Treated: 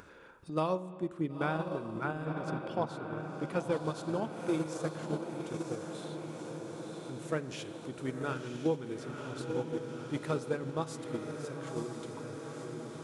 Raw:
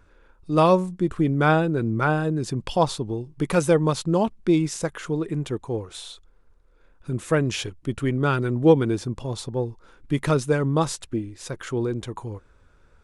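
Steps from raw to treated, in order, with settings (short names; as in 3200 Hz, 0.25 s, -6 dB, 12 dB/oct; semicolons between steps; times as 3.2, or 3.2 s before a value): HPF 140 Hz 12 dB/oct; diffused feedback echo 0.977 s, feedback 65%, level -4.5 dB; upward compressor, threshold -24 dBFS; 2.25–3.72 high shelf 4400 Hz -8 dB; spring tank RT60 1.3 s, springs 38/45 ms, chirp 50 ms, DRR 11 dB; compressor 4:1, threshold -21 dBFS, peak gain reduction 10 dB; gate -23 dBFS, range -8 dB; gain -6.5 dB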